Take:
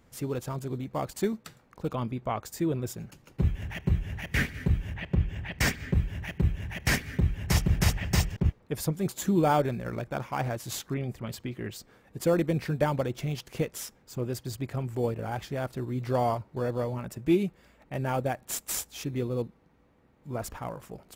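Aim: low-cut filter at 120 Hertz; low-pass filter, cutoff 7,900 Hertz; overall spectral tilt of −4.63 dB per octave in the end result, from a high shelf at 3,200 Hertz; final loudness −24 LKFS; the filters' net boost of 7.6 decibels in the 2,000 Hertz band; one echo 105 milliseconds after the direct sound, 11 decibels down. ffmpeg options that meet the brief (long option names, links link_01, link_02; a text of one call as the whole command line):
ffmpeg -i in.wav -af "highpass=120,lowpass=7900,equalizer=frequency=2000:width_type=o:gain=8,highshelf=frequency=3200:gain=3,aecho=1:1:105:0.282,volume=5.5dB" out.wav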